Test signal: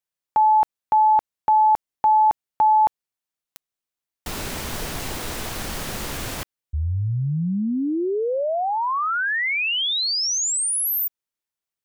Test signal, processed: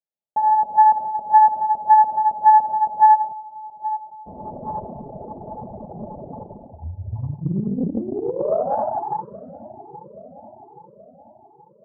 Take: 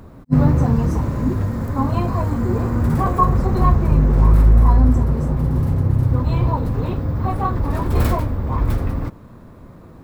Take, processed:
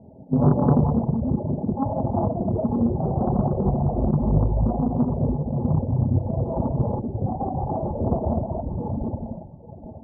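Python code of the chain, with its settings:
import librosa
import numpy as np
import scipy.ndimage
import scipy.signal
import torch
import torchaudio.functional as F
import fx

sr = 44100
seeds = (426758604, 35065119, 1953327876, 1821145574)

y = scipy.signal.sosfilt(scipy.signal.cheby1(6, 6, 880.0, 'lowpass', fs=sr, output='sos'), x)
y = fx.peak_eq(y, sr, hz=300.0, db=-8.0, octaves=0.32)
y = fx.echo_feedback(y, sr, ms=826, feedback_pct=50, wet_db=-14)
y = fx.rev_gated(y, sr, seeds[0], gate_ms=470, shape='flat', drr_db=-7.5)
y = fx.dereverb_blind(y, sr, rt60_s=2.0)
y = fx.highpass(y, sr, hz=180.0, slope=6)
y = fx.doppler_dist(y, sr, depth_ms=0.63)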